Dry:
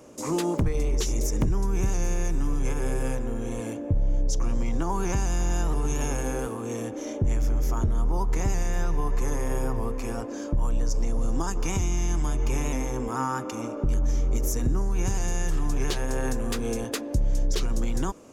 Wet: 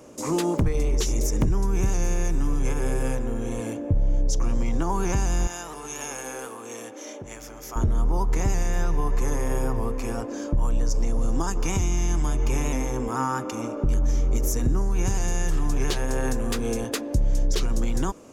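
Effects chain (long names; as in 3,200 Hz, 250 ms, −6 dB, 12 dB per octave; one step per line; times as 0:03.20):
0:05.47–0:07.76: high-pass filter 1,000 Hz 6 dB per octave
level +2 dB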